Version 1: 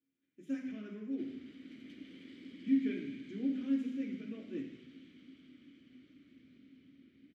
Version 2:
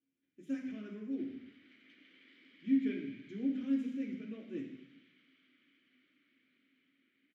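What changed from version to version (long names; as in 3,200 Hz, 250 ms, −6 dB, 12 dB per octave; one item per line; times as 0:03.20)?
background: add resonant band-pass 1,800 Hz, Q 1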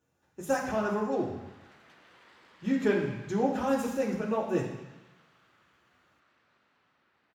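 background −9.5 dB
master: remove formant filter i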